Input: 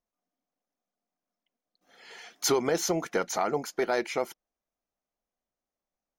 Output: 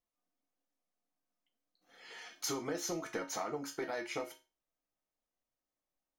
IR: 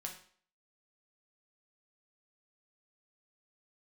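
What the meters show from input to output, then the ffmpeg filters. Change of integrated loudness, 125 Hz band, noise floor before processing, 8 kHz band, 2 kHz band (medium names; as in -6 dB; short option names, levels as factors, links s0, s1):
-10.5 dB, -10.0 dB, under -85 dBFS, -8.5 dB, -8.5 dB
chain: -filter_complex "[0:a]acompressor=threshold=0.0282:ratio=6[s0];[1:a]atrim=start_sample=2205,asetrate=74970,aresample=44100[s1];[s0][s1]afir=irnorm=-1:irlink=0,volume=1.5"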